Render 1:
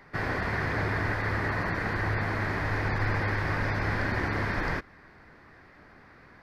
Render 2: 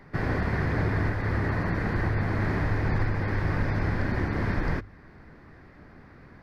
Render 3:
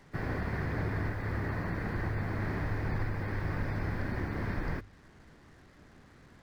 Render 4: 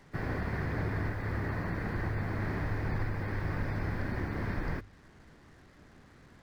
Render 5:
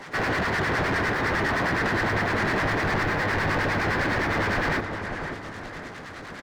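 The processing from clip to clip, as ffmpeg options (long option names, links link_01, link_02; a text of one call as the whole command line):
ffmpeg -i in.wav -af "lowshelf=frequency=430:gain=11.5,bandreject=frequency=50:width_type=h:width=6,bandreject=frequency=100:width_type=h:width=6,alimiter=limit=-14dB:level=0:latency=1:release=430,volume=-2.5dB" out.wav
ffmpeg -i in.wav -af "acrusher=bits=8:mix=0:aa=0.5,volume=-7dB" out.wav
ffmpeg -i in.wav -af anull out.wav
ffmpeg -i in.wav -filter_complex "[0:a]acrossover=split=940[link_01][link_02];[link_01]aeval=exprs='val(0)*(1-0.7/2+0.7/2*cos(2*PI*9.8*n/s))':channel_layout=same[link_03];[link_02]aeval=exprs='val(0)*(1-0.7/2-0.7/2*cos(2*PI*9.8*n/s))':channel_layout=same[link_04];[link_03][link_04]amix=inputs=2:normalize=0,asplit=2[link_05][link_06];[link_06]highpass=frequency=720:poles=1,volume=26dB,asoftclip=type=tanh:threshold=-23.5dB[link_07];[link_05][link_07]amix=inputs=2:normalize=0,lowpass=frequency=4700:poles=1,volume=-6dB,asplit=2[link_08][link_09];[link_09]adelay=538,lowpass=frequency=2000:poles=1,volume=-6.5dB,asplit=2[link_10][link_11];[link_11]adelay=538,lowpass=frequency=2000:poles=1,volume=0.46,asplit=2[link_12][link_13];[link_13]adelay=538,lowpass=frequency=2000:poles=1,volume=0.46,asplit=2[link_14][link_15];[link_15]adelay=538,lowpass=frequency=2000:poles=1,volume=0.46,asplit=2[link_16][link_17];[link_17]adelay=538,lowpass=frequency=2000:poles=1,volume=0.46[link_18];[link_10][link_12][link_14][link_16][link_18]amix=inputs=5:normalize=0[link_19];[link_08][link_19]amix=inputs=2:normalize=0,volume=6dB" out.wav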